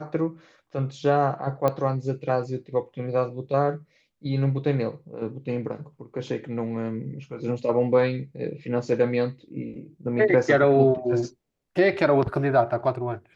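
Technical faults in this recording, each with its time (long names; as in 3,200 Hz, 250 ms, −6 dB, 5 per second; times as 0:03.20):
0:01.68: click −12 dBFS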